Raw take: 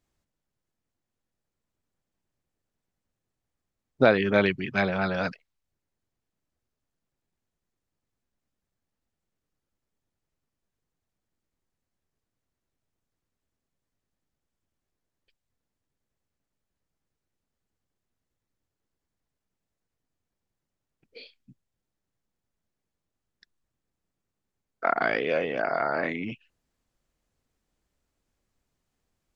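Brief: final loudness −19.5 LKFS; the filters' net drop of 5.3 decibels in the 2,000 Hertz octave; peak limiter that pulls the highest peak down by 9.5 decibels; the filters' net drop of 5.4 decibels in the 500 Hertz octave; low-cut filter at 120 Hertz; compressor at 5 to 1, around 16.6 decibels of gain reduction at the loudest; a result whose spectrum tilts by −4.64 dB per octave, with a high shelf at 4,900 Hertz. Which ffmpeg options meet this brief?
ffmpeg -i in.wav -af "highpass=120,equalizer=frequency=500:width_type=o:gain=-6.5,equalizer=frequency=2000:width_type=o:gain=-6,highshelf=frequency=4900:gain=-6,acompressor=threshold=-37dB:ratio=5,volume=24.5dB,alimiter=limit=-7dB:level=0:latency=1" out.wav

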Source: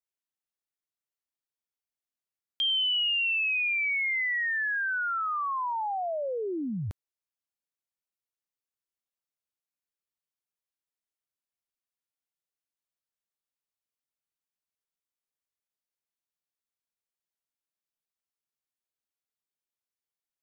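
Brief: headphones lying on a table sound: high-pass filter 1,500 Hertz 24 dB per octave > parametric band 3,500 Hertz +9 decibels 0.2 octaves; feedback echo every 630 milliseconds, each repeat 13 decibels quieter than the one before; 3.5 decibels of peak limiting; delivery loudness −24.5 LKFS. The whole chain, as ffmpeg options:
ffmpeg -i in.wav -af "alimiter=level_in=2.5dB:limit=-24dB:level=0:latency=1,volume=-2.5dB,highpass=frequency=1500:width=0.5412,highpass=frequency=1500:width=1.3066,equalizer=frequency=3500:width_type=o:width=0.2:gain=9,aecho=1:1:630|1260|1890:0.224|0.0493|0.0108,volume=3dB" out.wav

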